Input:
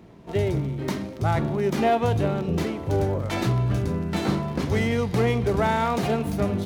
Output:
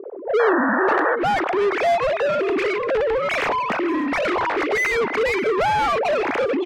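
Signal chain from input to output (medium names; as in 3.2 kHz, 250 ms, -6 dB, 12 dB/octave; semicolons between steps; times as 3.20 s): formants replaced by sine waves; bass shelf 240 Hz -8.5 dB; in parallel at +3 dB: compression, threshold -30 dBFS, peak gain reduction 17.5 dB; on the sum: low-pass sweep 500 Hz -> 2.4 kHz, 0.52–1.32 s; overdrive pedal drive 27 dB, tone 1.8 kHz, clips at -5 dBFS; painted sound noise, 0.39–1.16 s, 480–1900 Hz -14 dBFS; on a send: delay 577 ms -18 dB; on the sum: trim -7.5 dB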